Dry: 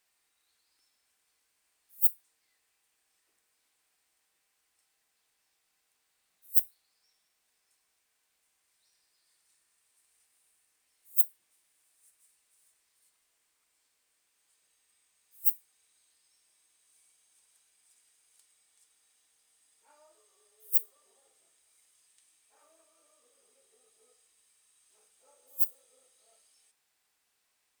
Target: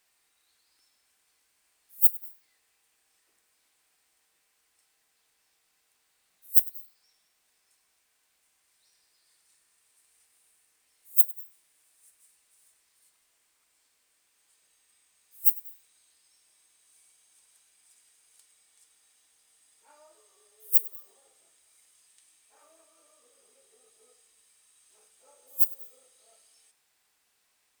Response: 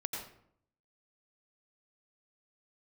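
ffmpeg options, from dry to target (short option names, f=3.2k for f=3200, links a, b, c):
-filter_complex "[0:a]asplit=2[a][b];[1:a]atrim=start_sample=2205,adelay=100[c];[b][c]afir=irnorm=-1:irlink=0,volume=-19.5dB[d];[a][d]amix=inputs=2:normalize=0,volume=4.5dB"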